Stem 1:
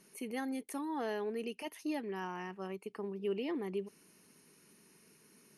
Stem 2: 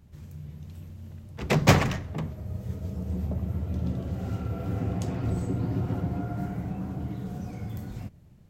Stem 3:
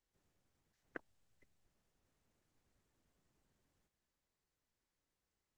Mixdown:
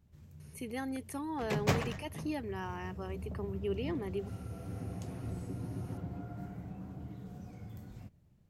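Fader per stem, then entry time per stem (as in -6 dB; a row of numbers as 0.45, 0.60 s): 0.0, -11.5, -7.0 dB; 0.40, 0.00, 0.00 s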